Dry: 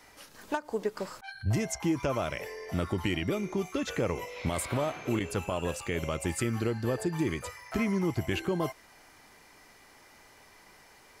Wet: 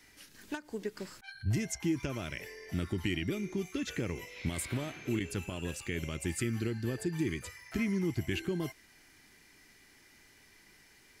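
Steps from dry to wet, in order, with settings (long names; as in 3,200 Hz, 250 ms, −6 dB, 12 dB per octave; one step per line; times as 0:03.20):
flat-topped bell 780 Hz −10.5 dB
level −2.5 dB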